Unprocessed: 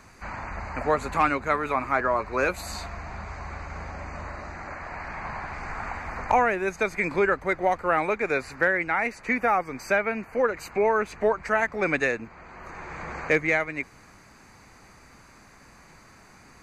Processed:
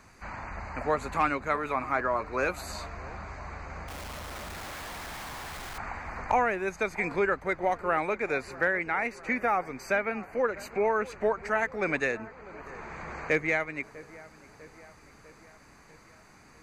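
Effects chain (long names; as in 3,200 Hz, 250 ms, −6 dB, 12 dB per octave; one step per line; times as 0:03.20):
0:03.88–0:05.78: sign of each sample alone
delay with a low-pass on its return 648 ms, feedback 59%, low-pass 1,600 Hz, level −18.5 dB
level −4 dB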